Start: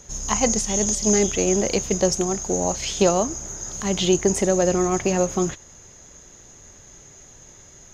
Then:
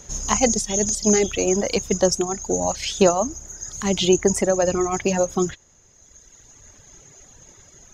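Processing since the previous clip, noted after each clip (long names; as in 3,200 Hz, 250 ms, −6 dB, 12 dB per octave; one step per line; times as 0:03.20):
reverb reduction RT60 2 s
level +2.5 dB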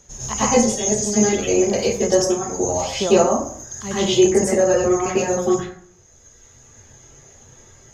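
dense smooth reverb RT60 0.57 s, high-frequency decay 0.5×, pre-delay 85 ms, DRR −10 dB
level −8 dB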